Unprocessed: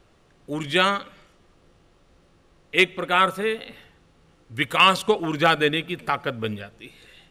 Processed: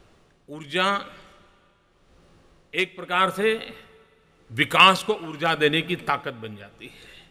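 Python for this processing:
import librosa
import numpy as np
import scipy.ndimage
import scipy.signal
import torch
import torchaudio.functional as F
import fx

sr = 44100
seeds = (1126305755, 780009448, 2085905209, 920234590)

y = x * (1.0 - 0.75 / 2.0 + 0.75 / 2.0 * np.cos(2.0 * np.pi * 0.85 * (np.arange(len(x)) / sr)))
y = fx.rev_double_slope(y, sr, seeds[0], early_s=0.27, late_s=2.6, knee_db=-16, drr_db=16.5)
y = F.gain(torch.from_numpy(y), 3.0).numpy()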